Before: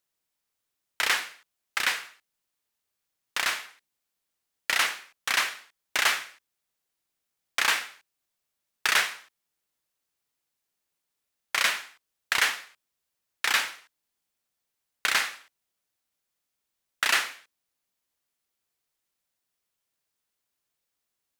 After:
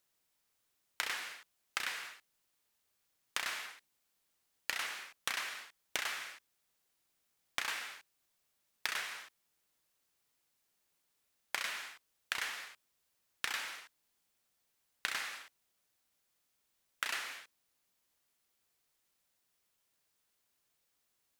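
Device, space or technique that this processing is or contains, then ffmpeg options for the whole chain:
serial compression, leveller first: -af "acompressor=threshold=-27dB:ratio=2.5,acompressor=threshold=-37dB:ratio=8,volume=3dB"

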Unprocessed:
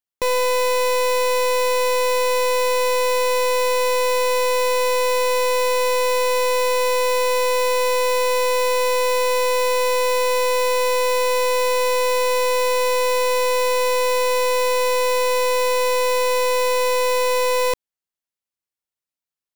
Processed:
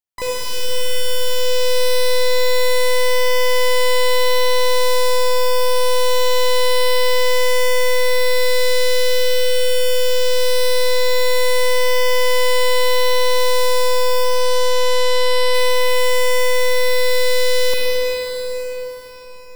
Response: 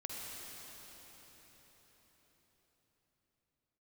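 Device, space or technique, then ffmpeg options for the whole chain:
shimmer-style reverb: -filter_complex "[0:a]asettb=1/sr,asplit=3[a][b][c];[a]atrim=end=14.244[d];[b]atrim=start=14.24:end=15.55,asetpts=PTS-STARTPTS,afade=t=in:d=0.004:c=qsin,afade=t=out:st=1.306:d=0.004:c=qsin,lowpass=6.9k[e];[c]atrim=start=15.546[f];[d][e]acrossfade=d=0.004:c1=hsin:c2=qsin[g];[g][f]acrossfade=d=0.004:c1=qsin:c2=hsin,asplit=2[h][i];[i]asetrate=88200,aresample=44100,atempo=0.5,volume=-5dB[j];[h][j]amix=inputs=2:normalize=0[k];[1:a]atrim=start_sample=2205[l];[k][l]afir=irnorm=-1:irlink=0,volume=2dB"

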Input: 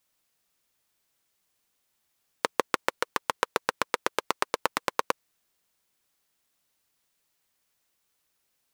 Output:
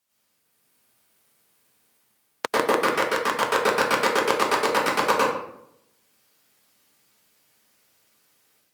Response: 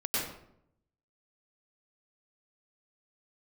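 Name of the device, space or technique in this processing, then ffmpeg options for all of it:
far-field microphone of a smart speaker: -filter_complex "[1:a]atrim=start_sample=2205[a];[0:a][a]afir=irnorm=-1:irlink=0,highpass=f=84:w=0.5412,highpass=f=84:w=1.3066,dynaudnorm=f=390:g=3:m=7dB,volume=-1dB" -ar 48000 -c:a libopus -b:a 48k

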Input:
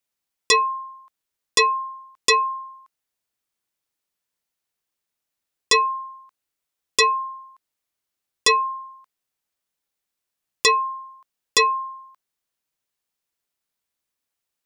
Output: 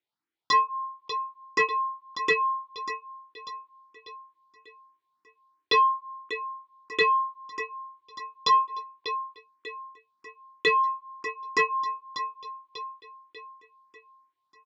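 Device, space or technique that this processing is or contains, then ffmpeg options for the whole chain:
barber-pole phaser into a guitar amplifier: -filter_complex "[0:a]asettb=1/sr,asplit=3[a][b][c];[a]atrim=end=0.834[d];[b]atrim=start=0.83:end=1.68,asetpts=PTS-STARTPTS,afade=t=in:d=0.004:c=qsin,afade=t=out:st=0.846:d=0.004:c=qsin,lowpass=f=7.6k:w=0.5412,lowpass=f=7.6k:w=1.3066[e];[c]atrim=start=1.676[f];[d][e]acrossfade=d=0.004:c1=hsin:c2=qsin[g];[g][f]acrossfade=d=0.004:c1=qsin:c2=hsin,asplit=2[h][i];[i]adelay=21,volume=-8.5dB[j];[h][j]amix=inputs=2:normalize=0,aecho=1:1:593|1186|1779|2372|2965:0.251|0.118|0.0555|0.0261|0.0123,asplit=2[k][l];[l]afreqshift=3[m];[k][m]amix=inputs=2:normalize=1,asoftclip=type=tanh:threshold=-11.5dB,highpass=100,equalizer=f=320:t=q:w=4:g=10,equalizer=f=560:t=q:w=4:g=-7,equalizer=f=880:t=q:w=4:g=4,equalizer=f=1.4k:t=q:w=4:g=3,equalizer=f=2.7k:t=q:w=4:g=-5,lowpass=f=4.1k:w=0.5412,lowpass=f=4.1k:w=1.3066"

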